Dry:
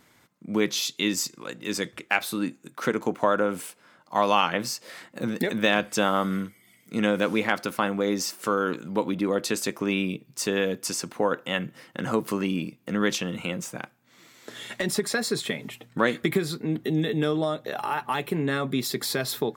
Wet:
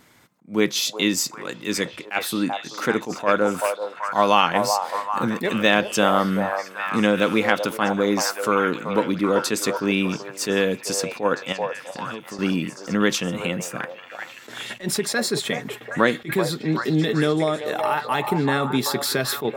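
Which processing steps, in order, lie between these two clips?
11.52–12.39 compressor 4:1, threshold -39 dBFS, peak gain reduction 17 dB; delay with a stepping band-pass 0.384 s, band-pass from 720 Hz, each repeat 0.7 oct, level -3 dB; attack slew limiter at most 260 dB/s; gain +4.5 dB

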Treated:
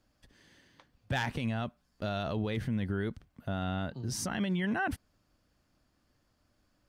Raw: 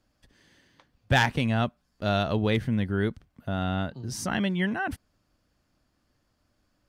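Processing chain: limiter -22.5 dBFS, peak gain reduction 10 dB; gain -1 dB

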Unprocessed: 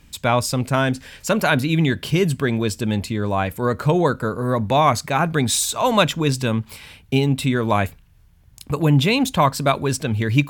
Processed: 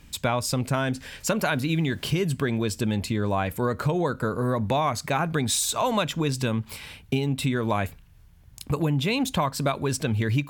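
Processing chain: 1.51–2.13 added noise pink -53 dBFS; compressor, threshold -21 dBFS, peak gain reduction 10.5 dB

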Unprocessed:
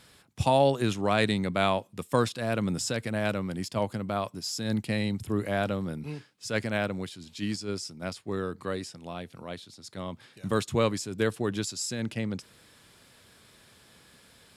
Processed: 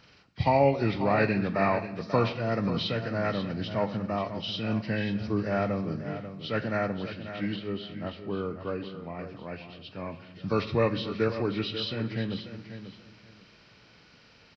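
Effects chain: nonlinear frequency compression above 1100 Hz 1.5:1; 7.56–9.19 high shelf 2700 Hz -9 dB; feedback echo 0.539 s, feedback 21%, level -11 dB; on a send at -11 dB: reverb RT60 1.0 s, pre-delay 7 ms

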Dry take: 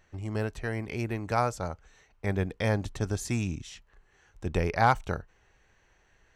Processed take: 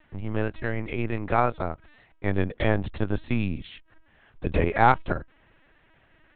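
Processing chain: LPC vocoder at 8 kHz pitch kept; gain +4.5 dB

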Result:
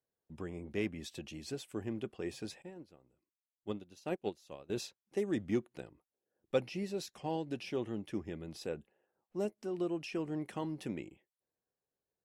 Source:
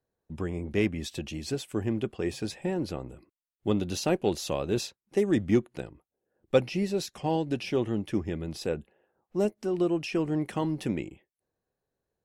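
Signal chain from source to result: low shelf 90 Hz -9.5 dB; 2.62–4.7 upward expander 2.5:1, over -35 dBFS; gain -8.5 dB

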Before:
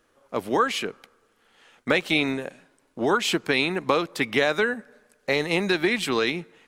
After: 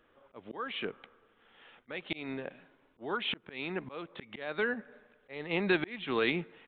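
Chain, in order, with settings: downsampling 8000 Hz; auto swell 0.581 s; gain -1.5 dB

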